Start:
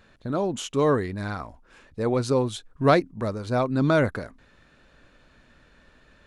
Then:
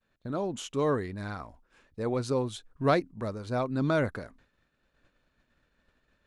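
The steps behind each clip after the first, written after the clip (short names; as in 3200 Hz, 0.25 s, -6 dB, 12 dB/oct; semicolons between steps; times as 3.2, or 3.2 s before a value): expander -48 dBFS; gain -6 dB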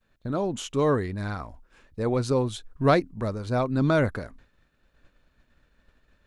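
low shelf 78 Hz +8.5 dB; gain +4 dB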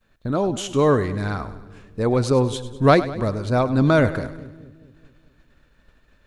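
split-band echo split 420 Hz, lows 0.214 s, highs 0.101 s, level -14.5 dB; gain +5.5 dB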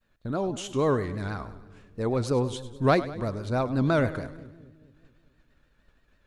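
vibrato 6.2 Hz 74 cents; gain -7 dB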